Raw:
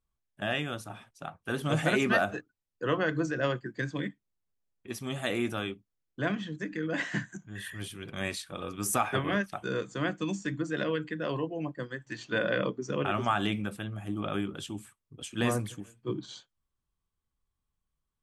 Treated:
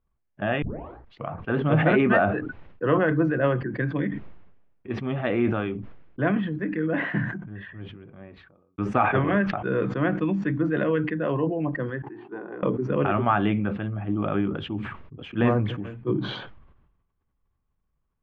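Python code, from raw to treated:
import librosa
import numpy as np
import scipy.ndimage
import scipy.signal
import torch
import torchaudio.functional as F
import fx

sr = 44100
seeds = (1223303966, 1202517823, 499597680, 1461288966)

y = fx.studio_fade_out(x, sr, start_s=6.73, length_s=2.05)
y = fx.double_bandpass(y, sr, hz=560.0, octaves=1.1, at=(12.02, 12.63))
y = fx.edit(y, sr, fx.tape_start(start_s=0.62, length_s=0.72), tone=tone)
y = scipy.signal.sosfilt(scipy.signal.butter(4, 2800.0, 'lowpass', fs=sr, output='sos'), y)
y = fx.high_shelf(y, sr, hz=2200.0, db=-11.5)
y = fx.sustainer(y, sr, db_per_s=54.0)
y = y * 10.0 ** (7.5 / 20.0)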